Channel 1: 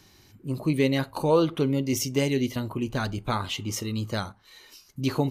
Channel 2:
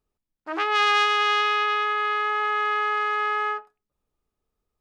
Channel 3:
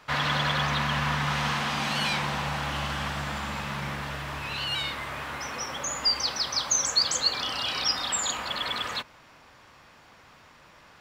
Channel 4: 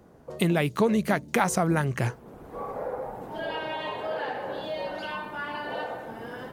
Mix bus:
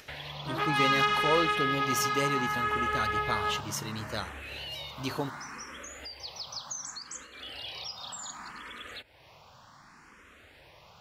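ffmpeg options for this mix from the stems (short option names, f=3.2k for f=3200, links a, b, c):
-filter_complex "[0:a]lowshelf=f=420:g=-10.5,volume=-2.5dB,asplit=2[a][b];[1:a]flanger=delay=18.5:depth=6.6:speed=0.6,volume=-3dB[c];[2:a]acompressor=threshold=-36dB:ratio=4,asplit=2[d][e];[e]afreqshift=0.67[f];[d][f]amix=inputs=2:normalize=1,volume=-1.5dB[g];[3:a]acompressor=threshold=-30dB:ratio=6,volume=-16dB[h];[b]apad=whole_len=287855[i];[h][i]sidechaingate=range=-33dB:threshold=-55dB:ratio=16:detection=peak[j];[a][c][g][j]amix=inputs=4:normalize=0,equalizer=f=63:t=o:w=2.2:g=3,acompressor=mode=upward:threshold=-49dB:ratio=2.5"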